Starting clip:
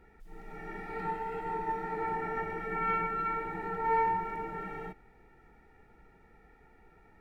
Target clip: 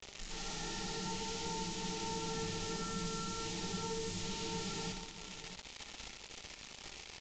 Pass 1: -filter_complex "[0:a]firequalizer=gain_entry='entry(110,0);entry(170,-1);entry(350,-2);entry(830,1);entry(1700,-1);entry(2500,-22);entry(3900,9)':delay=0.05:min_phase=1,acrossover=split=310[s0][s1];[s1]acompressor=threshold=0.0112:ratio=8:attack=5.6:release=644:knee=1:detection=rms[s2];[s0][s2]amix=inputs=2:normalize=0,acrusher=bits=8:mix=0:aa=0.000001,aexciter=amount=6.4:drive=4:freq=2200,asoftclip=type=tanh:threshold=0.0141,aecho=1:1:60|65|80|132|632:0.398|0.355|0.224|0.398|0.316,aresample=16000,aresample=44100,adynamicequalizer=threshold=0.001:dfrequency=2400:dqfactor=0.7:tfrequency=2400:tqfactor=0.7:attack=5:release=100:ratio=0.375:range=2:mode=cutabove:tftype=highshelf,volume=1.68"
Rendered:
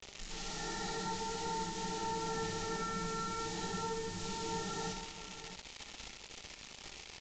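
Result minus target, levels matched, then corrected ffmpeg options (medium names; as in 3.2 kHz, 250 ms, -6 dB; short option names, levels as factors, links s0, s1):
compression: peak gain reduction -6.5 dB
-filter_complex "[0:a]firequalizer=gain_entry='entry(110,0);entry(170,-1);entry(350,-2);entry(830,1);entry(1700,-1);entry(2500,-22);entry(3900,9)':delay=0.05:min_phase=1,acrossover=split=310[s0][s1];[s1]acompressor=threshold=0.00473:ratio=8:attack=5.6:release=644:knee=1:detection=rms[s2];[s0][s2]amix=inputs=2:normalize=0,acrusher=bits=8:mix=0:aa=0.000001,aexciter=amount=6.4:drive=4:freq=2200,asoftclip=type=tanh:threshold=0.0141,aecho=1:1:60|65|80|132|632:0.398|0.355|0.224|0.398|0.316,aresample=16000,aresample=44100,adynamicequalizer=threshold=0.001:dfrequency=2400:dqfactor=0.7:tfrequency=2400:tqfactor=0.7:attack=5:release=100:ratio=0.375:range=2:mode=cutabove:tftype=highshelf,volume=1.68"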